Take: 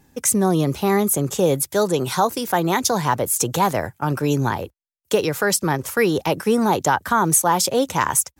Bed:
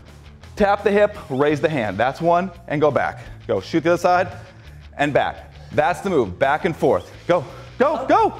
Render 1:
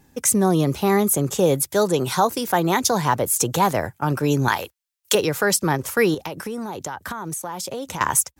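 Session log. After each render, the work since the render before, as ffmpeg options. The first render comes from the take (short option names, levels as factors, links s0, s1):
-filter_complex "[0:a]asettb=1/sr,asplit=3[s0][s1][s2];[s0]atrim=end=4.484[s3];[s1]atrim=start=4.48:end=5.15,asetpts=PTS-STARTPTS,afade=t=in:d=0.004:c=qsin,afade=t=out:st=0.666:d=0.004:c=qsin,tiltshelf=f=700:g=-10[s4];[s2]atrim=start=5.146[s5];[s3][s4]acrossfade=d=0.004:c1=hsin:c2=qsin[s6];[s6][s5]acrossfade=d=0.004:c1=qsin:c2=hsin,asettb=1/sr,asplit=3[s7][s8][s9];[s7]atrim=end=6.144[s10];[s8]atrim=start=6.14:end=8.01,asetpts=PTS-STARTPTS,afade=t=in:d=0.004:c=qsin,afade=t=out:st=1.866:d=0.004:c=qsin,acompressor=threshold=0.0501:ratio=8:attack=3.2:release=140:knee=1:detection=peak[s11];[s9]atrim=start=8.006[s12];[s10][s11]acrossfade=d=0.004:c1=hsin:c2=qsin[s13];[s13][s12]acrossfade=d=0.004:c1=qsin:c2=hsin"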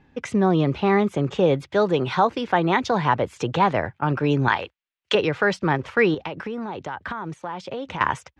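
-af "lowpass=f=2900:w=0.5412,lowpass=f=2900:w=1.3066,aemphasis=mode=production:type=75fm"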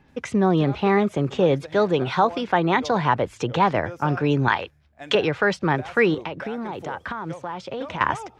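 -filter_complex "[1:a]volume=0.0944[s0];[0:a][s0]amix=inputs=2:normalize=0"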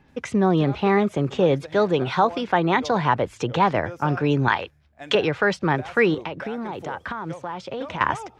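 -af anull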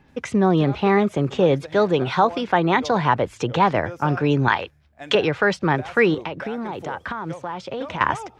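-af "volume=1.19"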